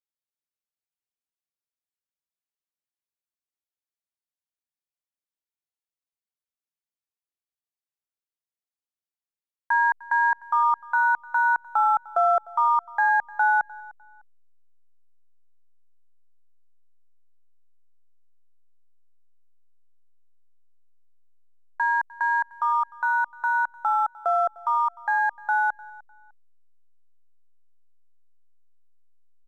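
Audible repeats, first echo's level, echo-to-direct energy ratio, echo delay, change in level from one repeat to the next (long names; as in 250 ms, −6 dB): 2, −21.5 dB, −21.0 dB, 302 ms, −11.5 dB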